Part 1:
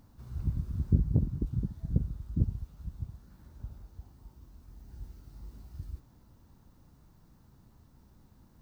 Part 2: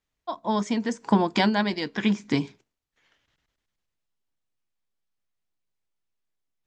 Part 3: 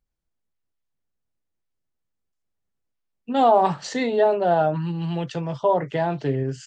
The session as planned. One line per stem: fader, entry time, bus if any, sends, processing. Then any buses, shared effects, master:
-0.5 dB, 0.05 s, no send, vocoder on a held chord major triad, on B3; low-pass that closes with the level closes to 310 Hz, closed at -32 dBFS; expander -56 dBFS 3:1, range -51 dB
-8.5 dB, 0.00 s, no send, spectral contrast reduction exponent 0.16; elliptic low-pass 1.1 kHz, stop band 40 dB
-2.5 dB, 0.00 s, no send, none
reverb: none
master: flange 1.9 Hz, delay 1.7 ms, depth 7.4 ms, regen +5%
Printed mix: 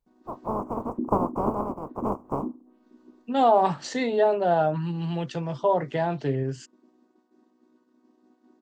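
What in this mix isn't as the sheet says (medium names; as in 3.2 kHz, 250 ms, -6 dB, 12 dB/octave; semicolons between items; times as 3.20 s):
stem 2 -8.5 dB -> +3.0 dB; master: missing flange 1.9 Hz, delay 1.7 ms, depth 7.4 ms, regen +5%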